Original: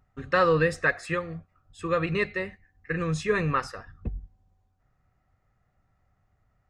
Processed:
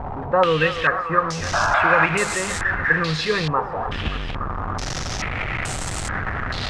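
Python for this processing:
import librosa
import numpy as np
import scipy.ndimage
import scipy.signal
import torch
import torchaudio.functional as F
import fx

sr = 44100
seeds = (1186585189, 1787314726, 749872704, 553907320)

p1 = fx.delta_mod(x, sr, bps=64000, step_db=-27.0)
p2 = fx.rider(p1, sr, range_db=3, speed_s=0.5)
p3 = p1 + (p2 * librosa.db_to_amplitude(2.0))
p4 = fx.spec_paint(p3, sr, seeds[0], shape='noise', start_s=1.53, length_s=0.53, low_hz=580.0, high_hz=1700.0, level_db=-17.0)
p5 = fx.echo_thinned(p4, sr, ms=289, feedback_pct=65, hz=440.0, wet_db=-10)
p6 = fx.filter_held_lowpass(p5, sr, hz=2.3, low_hz=870.0, high_hz=8000.0)
y = p6 * librosa.db_to_amplitude(-3.5)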